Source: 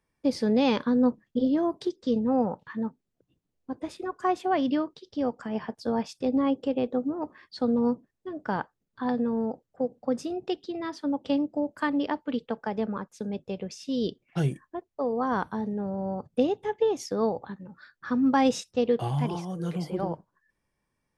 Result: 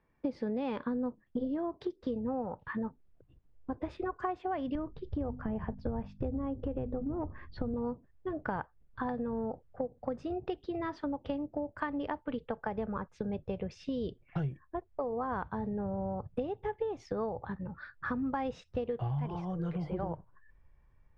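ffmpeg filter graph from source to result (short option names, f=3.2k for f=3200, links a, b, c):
-filter_complex "[0:a]asettb=1/sr,asplit=3[a][b][c];[a]atrim=end=4.754[d];[b]atrim=start=4.75:end=7.74,asetpts=PTS-STARTPTS,afade=t=in:d=0.004:c=qsin,afade=t=out:st=2.986:d=0.004:c=qsin,aemphasis=mode=reproduction:type=riaa,bandreject=f=50:t=h:w=6,bandreject=f=100:t=h:w=6,bandreject=f=150:t=h:w=6,bandreject=f=200:t=h:w=6,bandreject=f=250:t=h:w=6,acompressor=threshold=-24dB:ratio=2.5:attack=3.2:release=140:knee=1:detection=peak[e];[c]atrim=start=7.736[f];[d][e]acrossfade=d=0.004:c1=hsin:c2=qsin[g];[g][f]acrossfade=d=0.004:c1=qsin:c2=hsin,lowpass=2.1k,asubboost=boost=10:cutoff=72,acompressor=threshold=-38dB:ratio=6,volume=5.5dB"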